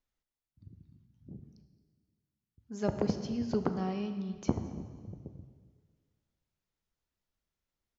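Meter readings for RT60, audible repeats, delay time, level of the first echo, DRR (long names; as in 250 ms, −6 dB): 1.7 s, 1, 221 ms, −21.0 dB, 7.5 dB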